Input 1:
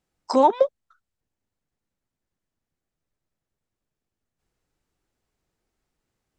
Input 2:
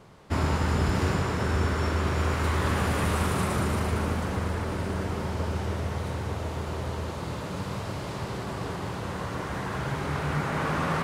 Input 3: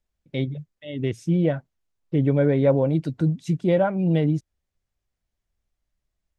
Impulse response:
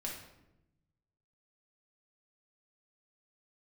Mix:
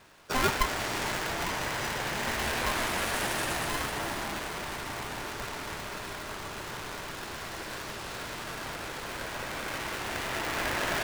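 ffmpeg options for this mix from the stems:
-filter_complex "[0:a]volume=-8.5dB[a];[1:a]highpass=f=860:p=1,volume=1.5dB[b];[2:a]highpass=220,volume=-17dB,asplit=2[c][d];[d]apad=whole_len=281529[e];[a][e]sidechaincompress=threshold=-42dB:ratio=8:attack=11:release=186[f];[f][b][c]amix=inputs=3:normalize=0,aeval=exprs='val(0)*sgn(sin(2*PI*510*n/s))':c=same"

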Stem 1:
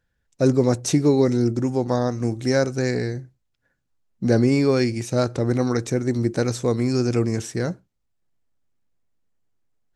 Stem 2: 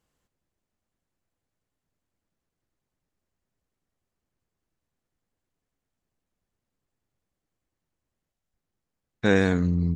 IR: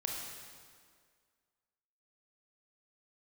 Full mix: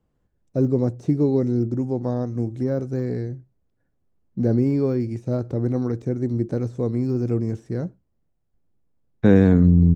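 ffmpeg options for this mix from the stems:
-filter_complex "[0:a]deesser=0.9,adelay=150,volume=-8dB[a];[1:a]highshelf=f=4.8k:g=-7.5,acrossover=split=330|3000[b][c][d];[c]acompressor=threshold=-28dB:ratio=1.5[e];[b][e][d]amix=inputs=3:normalize=0,volume=2dB[f];[a][f]amix=inputs=2:normalize=0,tiltshelf=f=860:g=8"

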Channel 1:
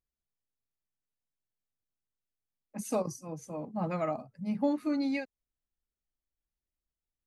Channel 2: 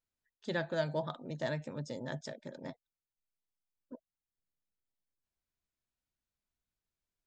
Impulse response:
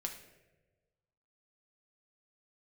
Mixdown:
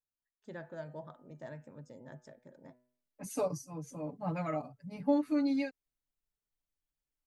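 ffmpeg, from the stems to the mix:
-filter_complex "[0:a]aecho=1:1:6.9:0.93,adelay=450,volume=-5dB[a];[1:a]equalizer=f=3.9k:t=o:w=1.1:g=-13.5,bandreject=f=123.7:t=h:w=4,bandreject=f=247.4:t=h:w=4,bandreject=f=371.1:t=h:w=4,bandreject=f=494.8:t=h:w=4,bandreject=f=618.5:t=h:w=4,bandreject=f=742.2:t=h:w=4,bandreject=f=865.9:t=h:w=4,bandreject=f=989.6:t=h:w=4,bandreject=f=1.1133k:t=h:w=4,bandreject=f=1.237k:t=h:w=4,bandreject=f=1.3607k:t=h:w=4,bandreject=f=1.4844k:t=h:w=4,bandreject=f=1.6081k:t=h:w=4,bandreject=f=1.7318k:t=h:w=4,bandreject=f=1.8555k:t=h:w=4,bandreject=f=1.9792k:t=h:w=4,bandreject=f=2.1029k:t=h:w=4,bandreject=f=2.2266k:t=h:w=4,bandreject=f=2.3503k:t=h:w=4,bandreject=f=2.474k:t=h:w=4,bandreject=f=2.5977k:t=h:w=4,bandreject=f=2.7214k:t=h:w=4,bandreject=f=2.8451k:t=h:w=4,bandreject=f=2.9688k:t=h:w=4,bandreject=f=3.0925k:t=h:w=4,volume=-9.5dB[b];[a][b]amix=inputs=2:normalize=0"

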